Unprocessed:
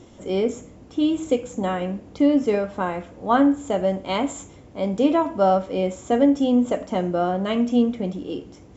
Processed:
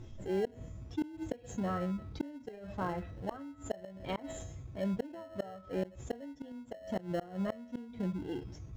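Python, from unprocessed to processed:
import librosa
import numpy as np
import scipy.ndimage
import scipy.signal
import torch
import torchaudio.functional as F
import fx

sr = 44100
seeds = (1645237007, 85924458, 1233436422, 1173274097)

p1 = fx.bin_expand(x, sr, power=1.5)
p2 = fx.comb_fb(p1, sr, f0_hz=650.0, decay_s=0.51, harmonics='all', damping=0.0, mix_pct=90)
p3 = fx.gate_flip(p2, sr, shuts_db=-35.0, range_db=-34)
p4 = fx.env_lowpass_down(p3, sr, base_hz=1800.0, full_db=-46.5)
p5 = fx.sample_hold(p4, sr, seeds[0], rate_hz=1200.0, jitter_pct=0)
p6 = p4 + (p5 * 10.0 ** (-7.0 / 20.0))
p7 = fx.lowpass(p6, sr, hz=2800.0, slope=6)
p8 = fx.env_flatten(p7, sr, amount_pct=50)
y = p8 * 10.0 ** (8.5 / 20.0)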